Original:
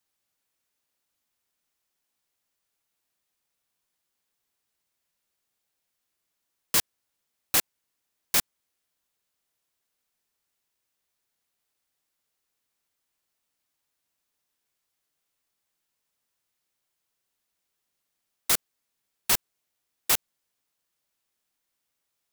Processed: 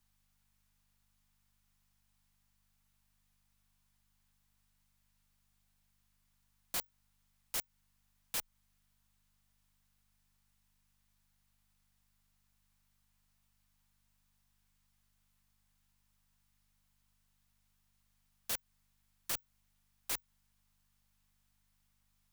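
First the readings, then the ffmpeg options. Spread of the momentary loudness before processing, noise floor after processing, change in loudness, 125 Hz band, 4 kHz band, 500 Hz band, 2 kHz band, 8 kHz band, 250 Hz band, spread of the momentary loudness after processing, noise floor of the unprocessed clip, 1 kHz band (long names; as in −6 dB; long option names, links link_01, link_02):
5 LU, −76 dBFS, −14.5 dB, −13.5 dB, −14.0 dB, −13.5 dB, −14.5 dB, −14.0 dB, −15.0 dB, 5 LU, −81 dBFS, −14.5 dB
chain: -af "aeval=exprs='val(0)+0.000316*(sin(2*PI*50*n/s)+sin(2*PI*2*50*n/s)/2+sin(2*PI*3*50*n/s)/3+sin(2*PI*4*50*n/s)/4+sin(2*PI*5*50*n/s)/5)':channel_layout=same,acompressor=threshold=-25dB:ratio=10,aeval=exprs='(tanh(17.8*val(0)+0.25)-tanh(0.25))/17.8':channel_layout=same,lowshelf=frequency=680:width_type=q:width=1.5:gain=-6.5,aeval=exprs='(mod(35.5*val(0)+1,2)-1)/35.5':channel_layout=same,afreqshift=-24,volume=1dB"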